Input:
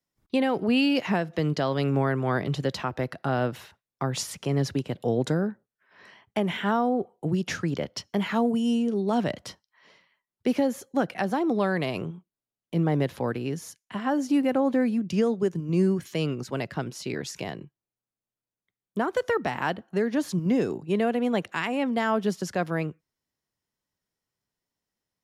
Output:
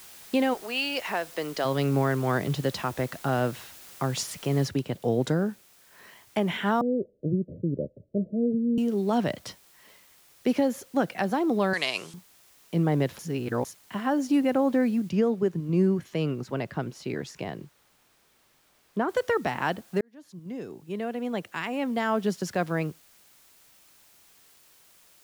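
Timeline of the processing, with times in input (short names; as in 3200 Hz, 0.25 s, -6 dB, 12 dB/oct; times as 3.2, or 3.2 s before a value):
0.53–1.64 HPF 830 Hz -> 370 Hz
4.67 noise floor step -48 dB -58 dB
6.81–8.78 Chebyshev low-pass 620 Hz, order 8
11.73–12.14 weighting filter ITU-R 468
13.19–13.65 reverse
15.09–19.09 high shelf 3400 Hz -10 dB
20.01–22.43 fade in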